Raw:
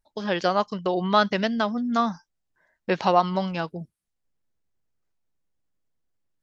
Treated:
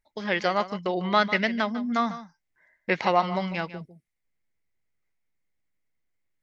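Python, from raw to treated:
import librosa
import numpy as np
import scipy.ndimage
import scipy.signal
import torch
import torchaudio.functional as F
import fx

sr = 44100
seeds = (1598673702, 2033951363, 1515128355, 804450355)

p1 = fx.peak_eq(x, sr, hz=2100.0, db=15.0, octaves=0.38)
p2 = p1 + fx.echo_single(p1, sr, ms=149, db=-14.0, dry=0)
y = p2 * 10.0 ** (-3.0 / 20.0)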